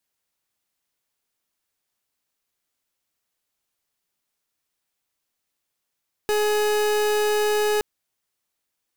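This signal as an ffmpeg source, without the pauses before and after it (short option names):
-f lavfi -i "aevalsrc='0.0891*(2*lt(mod(421*t,1),0.38)-1)':d=1.52:s=44100"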